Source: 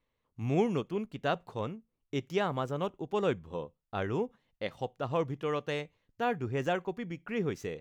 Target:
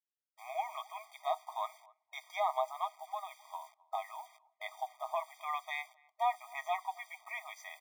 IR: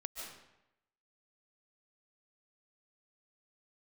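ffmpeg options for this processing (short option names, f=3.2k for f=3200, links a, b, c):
-filter_complex "[0:a]lowpass=f=2.3k:p=1,bandreject=f=60:t=h:w=6,bandreject=f=120:t=h:w=6,bandreject=f=180:t=h:w=6,bandreject=f=240:t=h:w=6,bandreject=f=300:t=h:w=6,bandreject=f=360:t=h:w=6,aecho=1:1:6.4:0.38,alimiter=limit=-23dB:level=0:latency=1:release=58,asettb=1/sr,asplit=3[a][b][c];[a]atrim=end=2.864[d];[b]atrim=start=2.86:end=5.14,asetpts=PTS-STARTPTS,afade=t=in:d=0.004:c=qsin,afade=t=out:st=2.276:d=0.004:c=qsin,acompressor=threshold=-36dB:ratio=4[e];[c]atrim=start=5.136[f];[d][e]acrossfade=d=0.004:c1=hsin:c2=qsin[g];[g][f]acrossfade=d=0.004:c1=qsin:c2=hsin,acrusher=bits=9:mix=0:aa=0.000001,asplit=2[h][i];[i]adelay=262,lowpass=f=1.1k:p=1,volume=-22.5dB,asplit=2[j][k];[k]adelay=262,lowpass=f=1.1k:p=1,volume=0.18[l];[h][j][l]amix=inputs=3:normalize=0,afftfilt=real='re*eq(mod(floor(b*sr/1024/630),2),1)':imag='im*eq(mod(floor(b*sr/1024/630),2),1)':win_size=1024:overlap=0.75,volume=5.5dB"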